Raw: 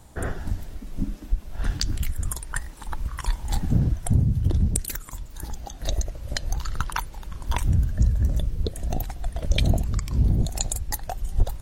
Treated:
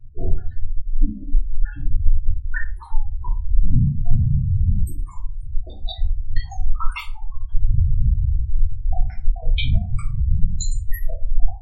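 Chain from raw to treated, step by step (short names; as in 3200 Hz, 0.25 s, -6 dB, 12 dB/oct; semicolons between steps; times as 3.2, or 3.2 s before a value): random spectral dropouts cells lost 34%; high shelf 6800 Hz -5.5 dB; notches 50/100/150/200/250 Hz; compressor 2:1, threshold -23 dBFS, peak gain reduction 5.5 dB; notch 6000 Hz, Q 6.8; spectral gate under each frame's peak -10 dB strong; flange 0.26 Hz, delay 9.7 ms, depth 1.5 ms, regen -62%; dynamic EQ 2800 Hz, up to +5 dB, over -58 dBFS, Q 0.73; reverb RT60 0.35 s, pre-delay 3 ms, DRR -6 dB; record warp 33 1/3 rpm, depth 100 cents; gain +2 dB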